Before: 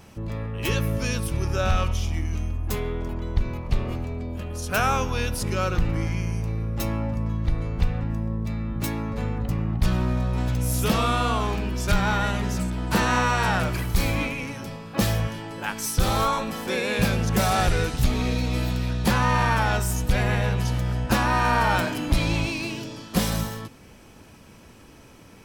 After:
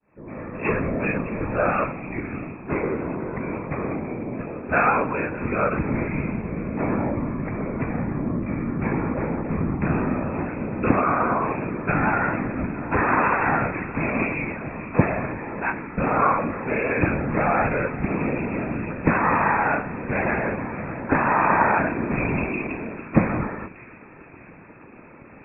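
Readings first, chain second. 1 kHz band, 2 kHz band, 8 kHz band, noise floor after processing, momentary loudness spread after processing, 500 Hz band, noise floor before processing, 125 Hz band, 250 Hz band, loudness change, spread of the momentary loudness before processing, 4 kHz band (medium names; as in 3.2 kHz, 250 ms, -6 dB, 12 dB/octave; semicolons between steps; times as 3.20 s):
+3.5 dB, +3.0 dB, under -40 dB, -45 dBFS, 10 LU, +4.0 dB, -48 dBFS, -4.0 dB, +3.5 dB, +1.0 dB, 8 LU, under -30 dB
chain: fade-in on the opening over 0.64 s; FFT band-pass 130–2600 Hz; whisper effect; in parallel at +2 dB: gain riding within 5 dB 2 s; on the sum: de-hum 185.8 Hz, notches 36; on a send: feedback echo behind a high-pass 610 ms, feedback 49%, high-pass 2 kHz, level -13 dB; on the sum: trim -3.5 dB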